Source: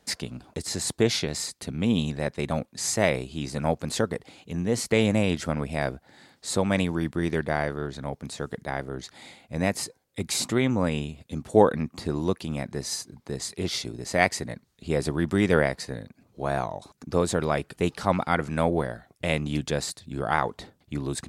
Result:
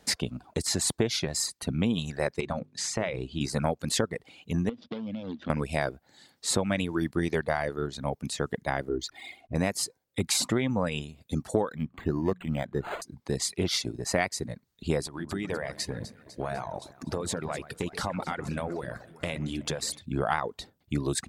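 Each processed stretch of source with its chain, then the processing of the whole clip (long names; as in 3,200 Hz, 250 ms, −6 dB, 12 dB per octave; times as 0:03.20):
0:02.40–0:03.41: downward compressor, threshold −26 dBFS + high-frequency loss of the air 66 metres + mains-hum notches 50/100/150/200/250/300/350/400/450 Hz
0:04.69–0:05.50: running median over 41 samples + loudspeaker in its box 120–5,000 Hz, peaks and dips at 130 Hz −7 dB, 240 Hz +9 dB, 390 Hz −7 dB, 740 Hz −3 dB, 1,400 Hz −4 dB, 3,400 Hz +10 dB + downward compressor 8 to 1, threshold −33 dBFS
0:08.89–0:09.55: spectral envelope exaggerated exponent 1.5 + comb filter 2.8 ms, depth 67% + slack as between gear wheels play −56 dBFS
0:11.70–0:13.02: running median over 5 samples + mains-hum notches 60/120/180 Hz + linearly interpolated sample-rate reduction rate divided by 8×
0:15.04–0:20.02: downward compressor, threshold −30 dBFS + delay that swaps between a low-pass and a high-pass 125 ms, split 2,300 Hz, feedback 73%, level −8 dB
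whole clip: reverb reduction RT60 1.3 s; downward compressor 12 to 1, threshold −26 dBFS; level +4 dB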